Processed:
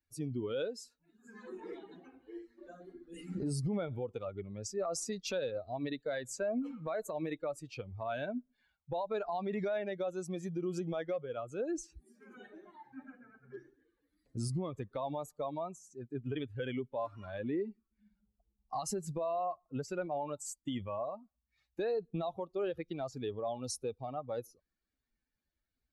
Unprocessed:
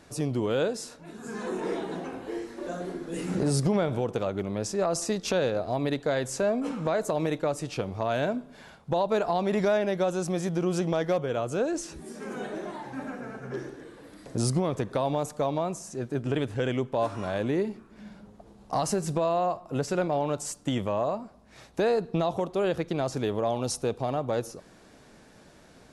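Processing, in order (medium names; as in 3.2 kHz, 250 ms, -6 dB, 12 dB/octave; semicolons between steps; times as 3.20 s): expander on every frequency bin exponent 2; peak limiter -26 dBFS, peak gain reduction 8.5 dB; trim -2 dB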